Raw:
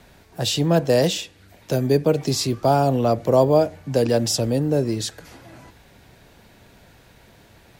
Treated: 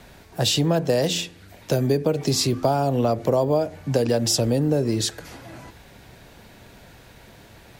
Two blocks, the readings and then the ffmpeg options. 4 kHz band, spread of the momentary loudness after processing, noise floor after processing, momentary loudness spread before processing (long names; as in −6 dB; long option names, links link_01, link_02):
+1.5 dB, 12 LU, −49 dBFS, 9 LU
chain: -af "bandreject=frequency=86.07:width_type=h:width=4,bandreject=frequency=172.14:width_type=h:width=4,bandreject=frequency=258.21:width_type=h:width=4,bandreject=frequency=344.28:width_type=h:width=4,bandreject=frequency=430.35:width_type=h:width=4,acompressor=threshold=-20dB:ratio=6,volume=3.5dB"